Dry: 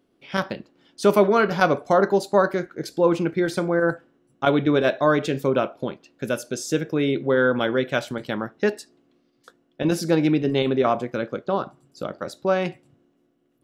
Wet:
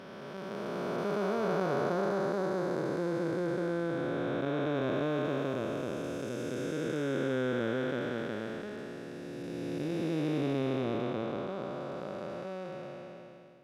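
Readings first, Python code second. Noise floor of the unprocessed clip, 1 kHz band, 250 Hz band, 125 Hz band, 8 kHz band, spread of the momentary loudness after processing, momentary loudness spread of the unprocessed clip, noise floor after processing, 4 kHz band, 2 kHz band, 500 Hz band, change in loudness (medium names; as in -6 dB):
-67 dBFS, -12.5 dB, -9.0 dB, -8.0 dB, -15.0 dB, 11 LU, 12 LU, -46 dBFS, -12.0 dB, -12.5 dB, -11.0 dB, -11.0 dB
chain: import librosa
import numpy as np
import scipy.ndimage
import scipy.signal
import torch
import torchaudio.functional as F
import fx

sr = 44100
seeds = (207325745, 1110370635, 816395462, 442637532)

y = fx.spec_blur(x, sr, span_ms=1210.0)
y = F.gain(torch.from_numpy(y), -5.0).numpy()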